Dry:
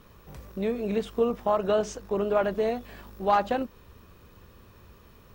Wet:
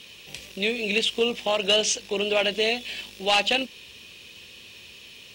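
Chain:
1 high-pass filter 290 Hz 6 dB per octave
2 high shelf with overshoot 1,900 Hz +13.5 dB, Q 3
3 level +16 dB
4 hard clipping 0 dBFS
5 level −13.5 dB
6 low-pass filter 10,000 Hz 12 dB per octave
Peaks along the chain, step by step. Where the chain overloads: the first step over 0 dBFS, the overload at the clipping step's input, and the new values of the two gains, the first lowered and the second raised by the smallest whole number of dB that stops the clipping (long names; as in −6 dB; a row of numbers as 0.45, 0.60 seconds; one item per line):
−11.5, −7.5, +8.5, 0.0, −13.5, −12.5 dBFS
step 3, 8.5 dB
step 3 +7 dB, step 5 −4.5 dB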